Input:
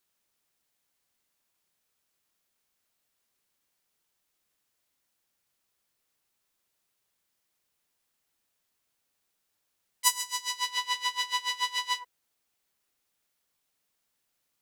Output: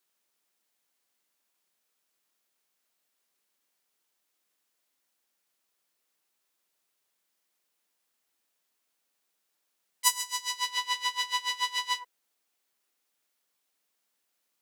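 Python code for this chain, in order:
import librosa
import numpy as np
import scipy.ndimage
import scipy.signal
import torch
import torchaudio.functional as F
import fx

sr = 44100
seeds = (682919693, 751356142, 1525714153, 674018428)

y = scipy.signal.sosfilt(scipy.signal.butter(2, 220.0, 'highpass', fs=sr, output='sos'), x)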